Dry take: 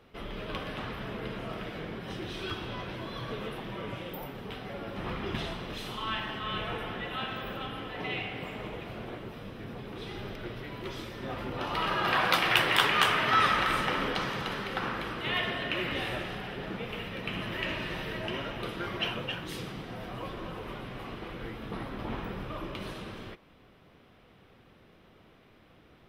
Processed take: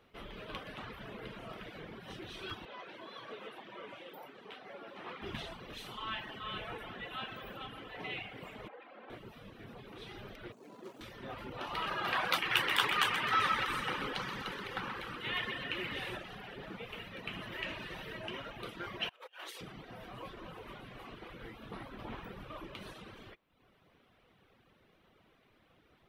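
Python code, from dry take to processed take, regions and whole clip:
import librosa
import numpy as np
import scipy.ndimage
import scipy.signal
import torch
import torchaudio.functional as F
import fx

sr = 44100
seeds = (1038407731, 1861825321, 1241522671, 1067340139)

y = fx.chain(x, sr, fx.highpass(hz=300.0, slope=12),
    fx.high_shelf(hz=8400.0, db=-12.0), at=(2.65, 5.22))
y = fx.chain(y, sr, fx.bandpass_edges(low_hz=380.0, high_hz=2200.0),
    fx.comb(ms=3.8, depth=0.56),
    fx.transformer_sat(knee_hz=790.0), at=(8.68, 9.1))
y = fx.chain(y, sr, fx.median_filter(points=25),
    fx.highpass(hz=180.0, slope=24), at=(10.52, 11.01))
y = fx.chain(y, sr, fx.peak_eq(hz=660.0, db=-10.0, octaves=0.21),
    fx.echo_split(split_hz=680.0, low_ms=304, high_ms=128, feedback_pct=52, wet_db=-6.5), at=(12.4, 16.17))
y = fx.chain(y, sr, fx.highpass(hz=470.0, slope=24),
    fx.over_compress(threshold_db=-43.0, ratio=-0.5), at=(19.09, 19.61))
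y = fx.dereverb_blind(y, sr, rt60_s=0.8)
y = fx.low_shelf(y, sr, hz=470.0, db=-4.0)
y = fx.notch(y, sr, hz=5100.0, q=23.0)
y = y * librosa.db_to_amplitude(-4.5)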